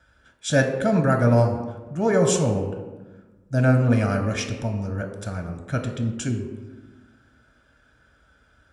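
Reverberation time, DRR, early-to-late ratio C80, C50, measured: 1.2 s, 4.0 dB, 9.0 dB, 7.5 dB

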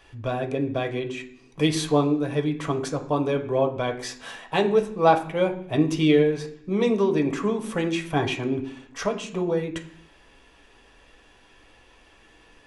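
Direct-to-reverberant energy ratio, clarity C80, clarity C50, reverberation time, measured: 2.0 dB, 15.0 dB, 11.5 dB, 0.65 s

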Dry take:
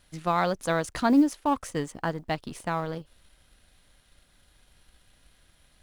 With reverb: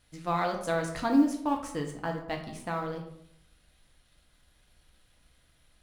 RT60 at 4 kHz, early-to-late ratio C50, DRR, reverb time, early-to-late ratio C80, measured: 0.45 s, 7.5 dB, 1.5 dB, 0.70 s, 10.5 dB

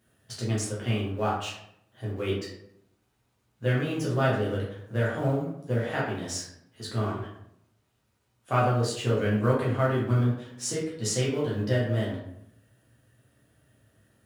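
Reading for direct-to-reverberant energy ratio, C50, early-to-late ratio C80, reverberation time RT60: -6.5 dB, 3.5 dB, 7.5 dB, 0.75 s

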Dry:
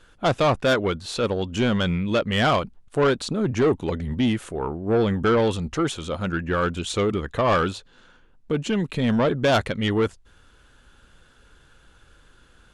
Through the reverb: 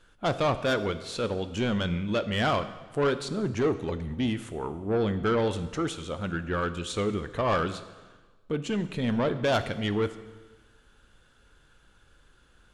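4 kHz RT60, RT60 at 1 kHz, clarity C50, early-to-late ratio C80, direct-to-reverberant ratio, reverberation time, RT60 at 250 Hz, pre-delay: 1.2 s, 1.3 s, 13.0 dB, 14.5 dB, 11.0 dB, 1.3 s, 1.3 s, 6 ms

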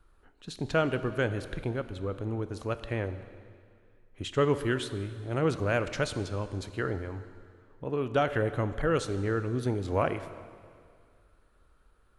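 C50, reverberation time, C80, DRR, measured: 12.5 dB, 2.1 s, 13.0 dB, 11.0 dB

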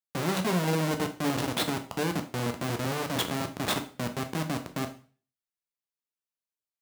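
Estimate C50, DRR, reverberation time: 12.0 dB, 5.5 dB, 0.40 s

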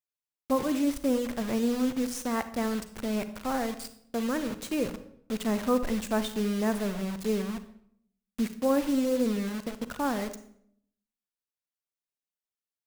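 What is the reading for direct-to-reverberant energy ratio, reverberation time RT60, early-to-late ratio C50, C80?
11.0 dB, 0.65 s, 12.0 dB, 16.0 dB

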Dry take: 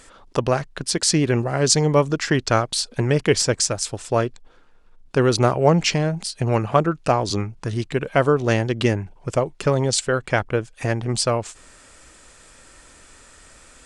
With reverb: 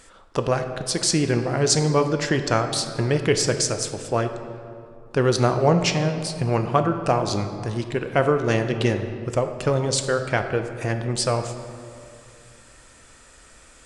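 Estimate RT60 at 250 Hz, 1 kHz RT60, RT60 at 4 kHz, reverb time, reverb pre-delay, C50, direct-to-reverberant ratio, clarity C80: 2.9 s, 2.3 s, 1.3 s, 2.4 s, 3 ms, 8.0 dB, 6.5 dB, 9.5 dB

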